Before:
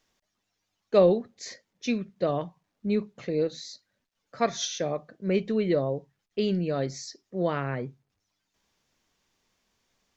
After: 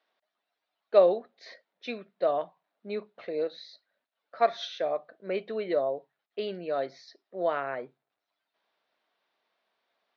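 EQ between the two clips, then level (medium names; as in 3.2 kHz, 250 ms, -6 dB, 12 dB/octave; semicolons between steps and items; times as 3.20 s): distance through air 290 m; cabinet simulation 490–6000 Hz, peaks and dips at 660 Hz +7 dB, 1.4 kHz +3 dB, 3.9 kHz +6 dB; 0.0 dB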